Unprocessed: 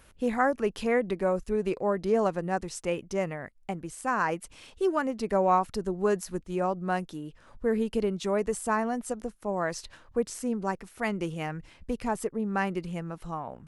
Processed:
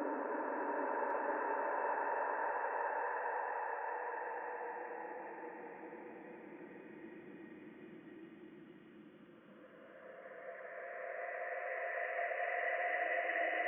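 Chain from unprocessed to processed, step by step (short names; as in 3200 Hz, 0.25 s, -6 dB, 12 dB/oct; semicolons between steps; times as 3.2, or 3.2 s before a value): sine-wave speech; Paulstretch 33×, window 0.25 s, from 10.63; echo with dull and thin repeats by turns 0.552 s, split 1100 Hz, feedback 61%, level -9.5 dB; gain -2.5 dB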